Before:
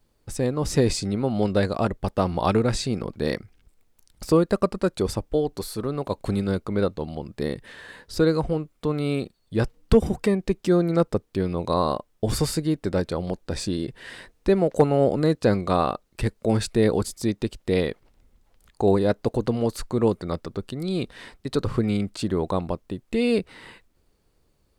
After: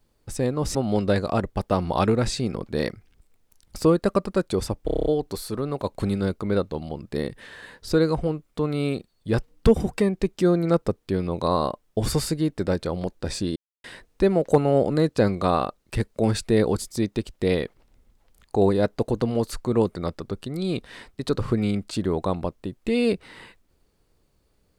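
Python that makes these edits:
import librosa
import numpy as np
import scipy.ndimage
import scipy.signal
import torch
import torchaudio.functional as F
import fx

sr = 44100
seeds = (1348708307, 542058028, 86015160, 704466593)

y = fx.edit(x, sr, fx.cut(start_s=0.75, length_s=0.47),
    fx.stutter(start_s=5.32, slice_s=0.03, count=8),
    fx.silence(start_s=13.82, length_s=0.28), tone=tone)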